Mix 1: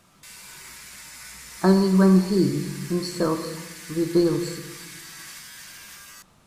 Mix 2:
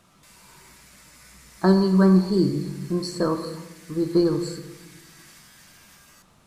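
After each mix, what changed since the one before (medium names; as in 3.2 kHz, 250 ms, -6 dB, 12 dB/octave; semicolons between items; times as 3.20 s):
background -9.5 dB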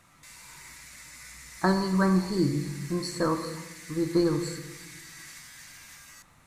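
background: add peaking EQ 5.2 kHz +7 dB 1.9 oct; master: add graphic EQ with 31 bands 200 Hz -9 dB, 400 Hz -10 dB, 630 Hz -5 dB, 2 kHz +7 dB, 3.15 kHz -5 dB, 5 kHz -5 dB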